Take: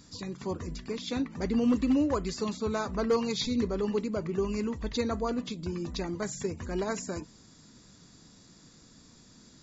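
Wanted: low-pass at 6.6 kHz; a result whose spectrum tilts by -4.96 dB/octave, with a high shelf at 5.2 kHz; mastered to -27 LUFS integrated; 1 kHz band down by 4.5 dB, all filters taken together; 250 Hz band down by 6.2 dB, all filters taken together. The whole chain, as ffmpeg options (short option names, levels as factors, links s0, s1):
-af "lowpass=6600,equalizer=f=250:t=o:g=-7,equalizer=f=1000:t=o:g=-5,highshelf=f=5200:g=-5.5,volume=2.66"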